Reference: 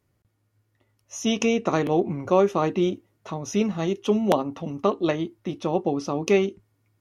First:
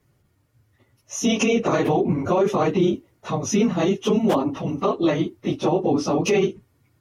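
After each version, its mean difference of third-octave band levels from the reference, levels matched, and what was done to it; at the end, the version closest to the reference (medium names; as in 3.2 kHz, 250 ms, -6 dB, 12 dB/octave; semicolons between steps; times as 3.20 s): 3.5 dB: phase randomisation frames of 50 ms; peak limiter -17.5 dBFS, peak gain reduction 10.5 dB; trim +6.5 dB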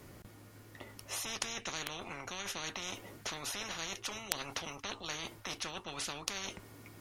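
15.5 dB: reverse; compression 10:1, threshold -30 dBFS, peak gain reduction 17 dB; reverse; spectrum-flattening compressor 10:1; trim +12.5 dB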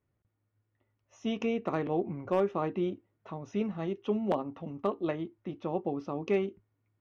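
2.0 dB: low-pass 2.5 kHz 12 dB/octave; hard clipper -10 dBFS, distortion -27 dB; trim -8.5 dB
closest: third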